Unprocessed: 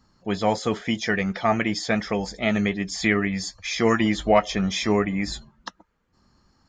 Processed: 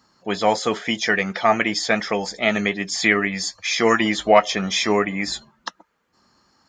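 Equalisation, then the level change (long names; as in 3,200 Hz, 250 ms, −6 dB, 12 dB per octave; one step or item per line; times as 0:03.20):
high-pass filter 450 Hz 6 dB per octave
+6.0 dB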